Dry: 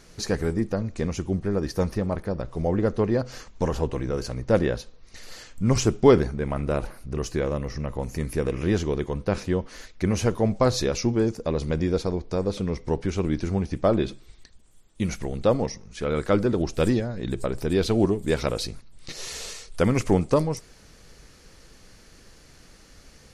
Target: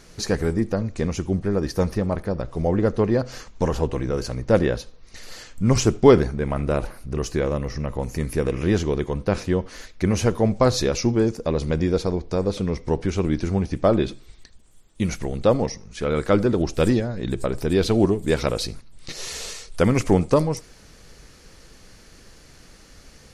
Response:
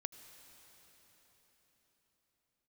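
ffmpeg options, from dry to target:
-filter_complex "[0:a]asplit=2[a][b];[1:a]atrim=start_sample=2205,atrim=end_sample=3969[c];[b][c]afir=irnorm=-1:irlink=0,volume=6.5dB[d];[a][d]amix=inputs=2:normalize=0,volume=-5dB"

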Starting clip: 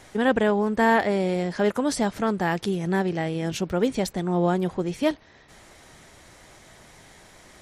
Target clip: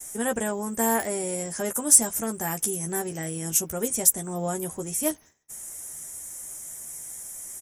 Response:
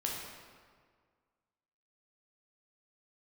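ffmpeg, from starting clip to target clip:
-filter_complex "[0:a]asplit=2[a][b];[b]adelay=13,volume=-6dB[c];[a][c]amix=inputs=2:normalize=0,aexciter=amount=15.6:drive=9:freq=6.6k,agate=range=-33dB:threshold=-34dB:ratio=3:detection=peak,volume=-7.5dB"

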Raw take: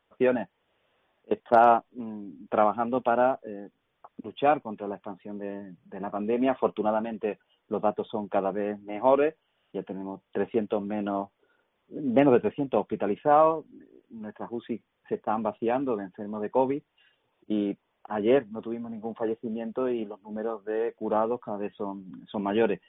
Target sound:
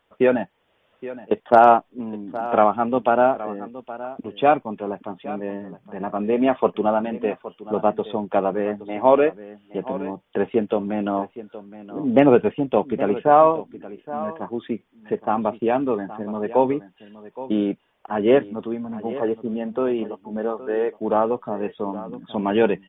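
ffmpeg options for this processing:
-af "aecho=1:1:819:0.168,volume=6dB"

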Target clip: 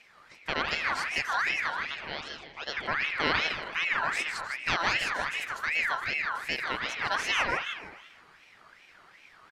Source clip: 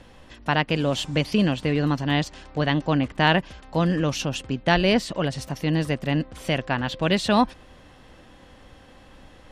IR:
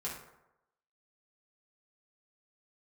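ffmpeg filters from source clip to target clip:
-filter_complex "[0:a]asettb=1/sr,asplit=3[a][b][c];[a]atrim=end=1.704[d];[b]atrim=start=1.7:end=2.77,asetpts=PTS-STARTPTS,afade=t=in:d=0.004:c=qsin,afade=t=out:st=1.066:d=0.004:c=qsin,highpass=630,lowpass=2.9k[e];[c]atrim=start=2.766[f];[d][e]acrossfade=d=0.004:c1=hsin:c2=qsin[g];[g][f]acrossfade=d=0.004:c1=qsin:c2=hsin,asplit=6[h][i][j][k][l][m];[i]adelay=156,afreqshift=35,volume=-6.5dB[n];[j]adelay=312,afreqshift=70,volume=-14.7dB[o];[k]adelay=468,afreqshift=105,volume=-22.9dB[p];[l]adelay=624,afreqshift=140,volume=-31dB[q];[m]adelay=780,afreqshift=175,volume=-39.2dB[r];[h][n][o][p][q][r]amix=inputs=6:normalize=0,asplit=2[s][t];[1:a]atrim=start_sample=2205,lowpass=2k,adelay=114[u];[t][u]afir=irnorm=-1:irlink=0,volume=-7dB[v];[s][v]amix=inputs=2:normalize=0,aeval=exprs='val(0)*sin(2*PI*1800*n/s+1800*0.35/2.6*sin(2*PI*2.6*n/s))':c=same,volume=-6.5dB"

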